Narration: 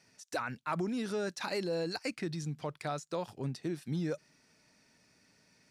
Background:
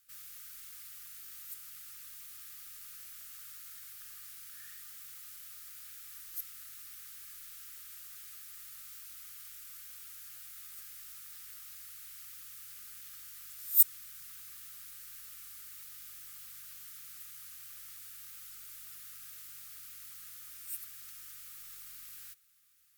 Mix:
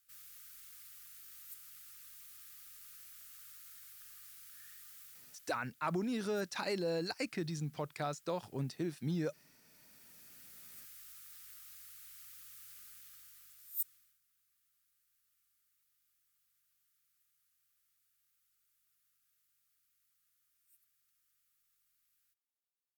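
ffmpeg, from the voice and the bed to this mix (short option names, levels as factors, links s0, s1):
-filter_complex "[0:a]adelay=5150,volume=0.841[s0];[1:a]volume=2.82,afade=t=out:st=5.01:d=0.62:silence=0.199526,afade=t=in:st=9.64:d=1.12:silence=0.188365,afade=t=out:st=12.76:d=1.43:silence=0.0630957[s1];[s0][s1]amix=inputs=2:normalize=0"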